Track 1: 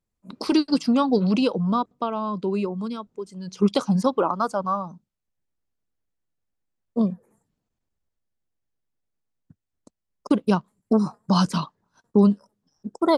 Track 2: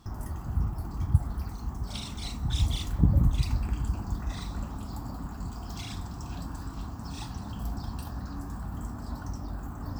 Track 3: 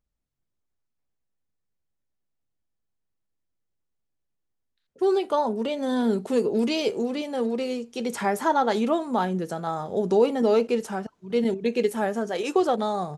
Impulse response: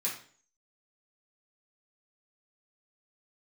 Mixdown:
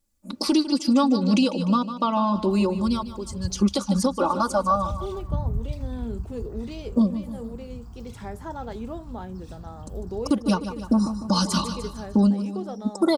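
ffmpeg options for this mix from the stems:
-filter_complex "[0:a]bass=f=250:g=3,treble=f=4000:g=10,aecho=1:1:3.5:0.98,volume=1.19,asplit=2[s0][s1];[s1]volume=0.224[s2];[1:a]asubboost=boost=3:cutoff=230,adelay=2300,volume=0.237[s3];[2:a]lowshelf=f=450:g=8,volume=0.158[s4];[s2]aecho=0:1:150|300|450|600|750|900:1|0.43|0.185|0.0795|0.0342|0.0147[s5];[s0][s3][s4][s5]amix=inputs=4:normalize=0,alimiter=limit=0.282:level=0:latency=1:release=408"

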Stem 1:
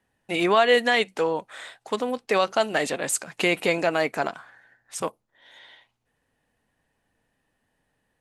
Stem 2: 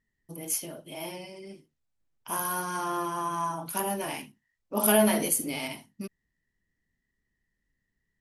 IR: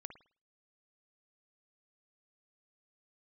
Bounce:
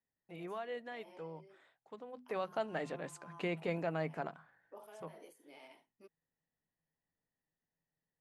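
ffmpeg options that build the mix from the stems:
-filter_complex "[0:a]bandreject=f=50:t=h:w=6,bandreject=f=100:t=h:w=6,bandreject=f=150:t=h:w=6,bandreject=f=200:t=h:w=6,bandreject=f=250:t=h:w=6,volume=0.224,afade=t=in:st=2:d=0.57:silence=0.334965,afade=t=out:st=4.47:d=0.69:silence=0.421697,asplit=2[s0][s1];[1:a]highpass=f=360:w=0.5412,highpass=f=360:w=1.3066,acompressor=threshold=0.02:ratio=16,volume=0.211[s2];[s1]apad=whole_len=361691[s3];[s2][s3]sidechaincompress=threshold=0.00398:ratio=4:attack=31:release=133[s4];[s0][s4]amix=inputs=2:normalize=0,lowpass=f=1300:p=1,equalizer=f=160:w=7.7:g=14"

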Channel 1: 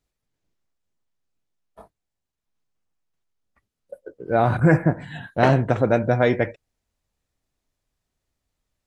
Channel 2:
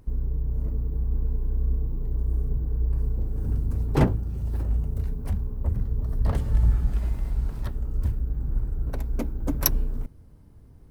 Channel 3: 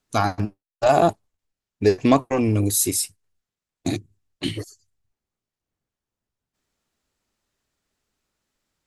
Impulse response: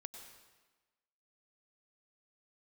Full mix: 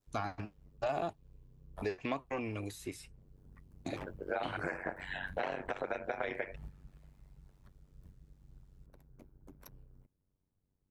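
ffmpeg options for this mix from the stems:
-filter_complex "[0:a]highpass=400,acompressor=threshold=0.112:ratio=6,volume=1.33,asplit=2[s0][s1];[1:a]lowshelf=f=160:g=-6,volume=0.2[s2];[2:a]lowpass=f=2700:p=1,volume=0.355[s3];[s1]apad=whole_len=481095[s4];[s2][s4]sidechaingate=range=0.355:threshold=0.00251:ratio=16:detection=peak[s5];[s0][s5]amix=inputs=2:normalize=0,tremolo=f=94:d=0.974,alimiter=limit=0.178:level=0:latency=1:release=377,volume=1[s6];[s3][s6]amix=inputs=2:normalize=0,adynamicequalizer=threshold=0.00355:dfrequency=2600:dqfactor=1.1:tfrequency=2600:tqfactor=1.1:attack=5:release=100:ratio=0.375:range=3.5:mode=boostabove:tftype=bell,acrossover=split=580|2400[s7][s8][s9];[s7]acompressor=threshold=0.00891:ratio=4[s10];[s8]acompressor=threshold=0.0141:ratio=4[s11];[s9]acompressor=threshold=0.00224:ratio=4[s12];[s10][s11][s12]amix=inputs=3:normalize=0"

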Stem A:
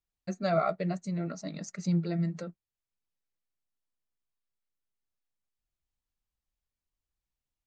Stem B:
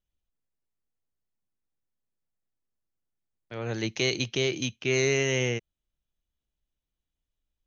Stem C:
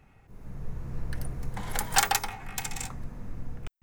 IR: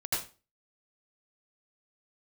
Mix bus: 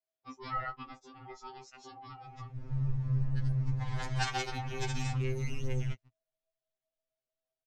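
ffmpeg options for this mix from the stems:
-filter_complex "[0:a]aeval=exprs='val(0)*sin(2*PI*630*n/s)':c=same,volume=0.841[s0];[1:a]alimiter=limit=0.141:level=0:latency=1,asoftclip=type=tanh:threshold=0.0631,adelay=350,volume=0.237[s1];[2:a]equalizer=f=110:w=1.5:g=11.5,adelay=2250,volume=1.26[s2];[s0][s2]amix=inputs=2:normalize=0,lowpass=f=5800:w=0.5412,lowpass=f=5800:w=1.3066,acompressor=threshold=0.0355:ratio=3,volume=1[s3];[s1][s3]amix=inputs=2:normalize=0,afftfilt=real='re*2.45*eq(mod(b,6),0)':imag='im*2.45*eq(mod(b,6),0)':win_size=2048:overlap=0.75"

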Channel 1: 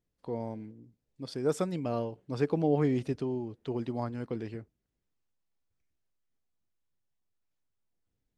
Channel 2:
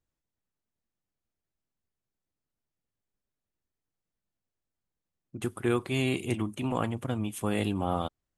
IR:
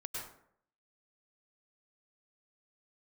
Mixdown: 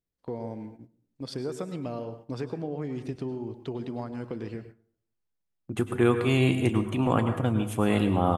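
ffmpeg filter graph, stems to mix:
-filter_complex "[0:a]acompressor=threshold=0.02:ratio=12,volume=1.26,asplit=2[s0][s1];[s1]volume=0.531[s2];[1:a]highshelf=f=3500:g=-7.5,adelay=350,volume=1.33,asplit=2[s3][s4];[s4]volume=0.668[s5];[2:a]atrim=start_sample=2205[s6];[s2][s5]amix=inputs=2:normalize=0[s7];[s7][s6]afir=irnorm=-1:irlink=0[s8];[s0][s3][s8]amix=inputs=3:normalize=0,agate=range=0.282:threshold=0.00501:ratio=16:detection=peak"

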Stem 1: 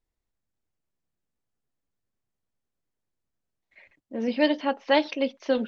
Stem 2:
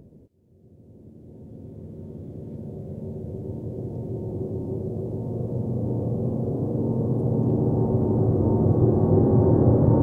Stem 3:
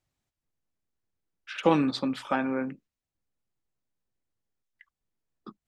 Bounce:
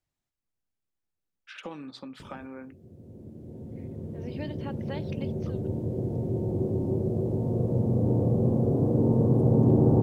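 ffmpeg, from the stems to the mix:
-filter_complex "[0:a]acompressor=threshold=0.0631:ratio=6,volume=0.282[s0];[1:a]adelay=2200,volume=1.26[s1];[2:a]acompressor=threshold=0.0178:ratio=3,volume=0.531,asplit=2[s2][s3];[s3]apad=whole_len=250339[s4];[s0][s4]sidechaincompress=threshold=0.00251:ratio=8:attack=16:release=1460[s5];[s5][s1][s2]amix=inputs=3:normalize=0"

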